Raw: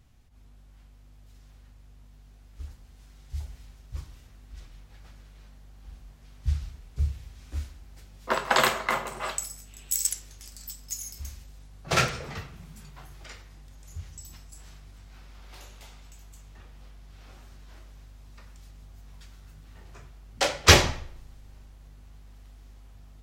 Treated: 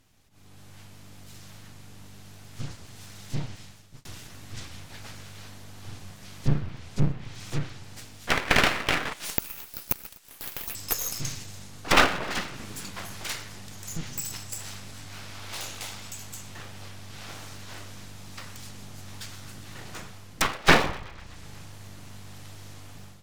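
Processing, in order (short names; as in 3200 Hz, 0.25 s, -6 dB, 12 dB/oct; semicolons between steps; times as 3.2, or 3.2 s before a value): 3.4–4.05 fade out linear; 9.13–10.75 pre-emphasis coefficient 0.97; treble ducked by the level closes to 1500 Hz, closed at -26 dBFS; AGC gain up to 12 dB; thinning echo 0.124 s, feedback 70%, high-pass 540 Hz, level -23 dB; full-wave rectifier; tilt +1.5 dB/oct; gain +1 dB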